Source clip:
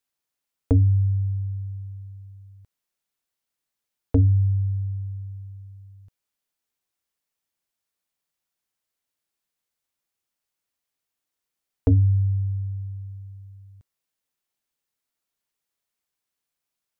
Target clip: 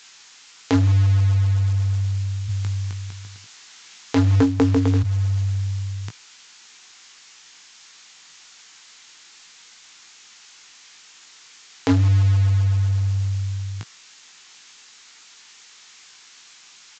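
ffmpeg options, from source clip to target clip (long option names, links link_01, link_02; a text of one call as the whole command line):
ffmpeg -i in.wav -filter_complex "[0:a]highpass=frequency=120:width=0.5412,highpass=frequency=120:width=1.3066,equalizer=frequency=570:width_type=o:width=0.33:gain=-10,asplit=3[link_01][link_02][link_03];[link_01]afade=type=out:start_time=2.48:duration=0.02[link_04];[link_02]aecho=1:1:260|455|601.2|710.9|793.2:0.631|0.398|0.251|0.158|0.1,afade=type=in:start_time=2.48:duration=0.02,afade=type=out:start_time=5.02:duration=0.02[link_05];[link_03]afade=type=in:start_time=5.02:duration=0.02[link_06];[link_04][link_05][link_06]amix=inputs=3:normalize=0,aeval=exprs='0.141*(cos(1*acos(clip(val(0)/0.141,-1,1)))-cos(1*PI/2))+0.00794*(cos(5*acos(clip(val(0)/0.141,-1,1)))-cos(5*PI/2))':channel_layout=same,tiltshelf=frequency=770:gain=-8.5,bandreject=frequency=640:width=14,asplit=2[link_07][link_08];[link_08]adelay=18,volume=-7dB[link_09];[link_07][link_09]amix=inputs=2:normalize=0,acrusher=bits=5:mode=log:mix=0:aa=0.000001,acompressor=threshold=-50dB:ratio=3,alimiter=level_in=34dB:limit=-1dB:release=50:level=0:latency=1,volume=-3dB" -ar 16000 -c:a pcm_mulaw out.wav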